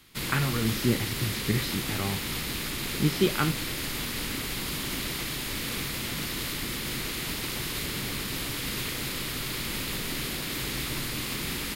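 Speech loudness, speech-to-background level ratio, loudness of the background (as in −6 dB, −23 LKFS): −29.5 LKFS, 1.5 dB, −31.0 LKFS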